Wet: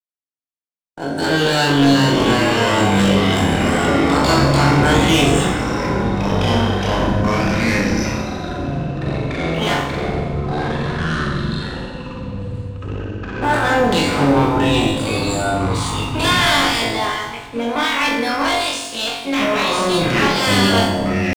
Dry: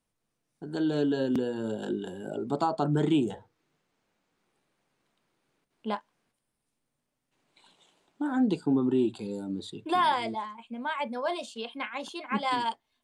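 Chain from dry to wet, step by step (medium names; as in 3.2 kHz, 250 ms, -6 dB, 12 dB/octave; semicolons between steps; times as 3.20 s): spectral peaks clipped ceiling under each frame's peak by 22 dB; expander -56 dBFS; in parallel at -2 dB: peak limiter -22.5 dBFS, peak gain reduction 10.5 dB; on the sum: resampled via 22.05 kHz; tempo 0.61×; one-sided clip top -28 dBFS; on a send: flutter echo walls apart 3.7 m, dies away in 0.47 s; on the sum: waveshaping leveller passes 2; FDN reverb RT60 1.4 s, low-frequency decay 1.1×, high-frequency decay 0.9×, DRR 5 dB; ever faster or slower copies 410 ms, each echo -6 st, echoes 3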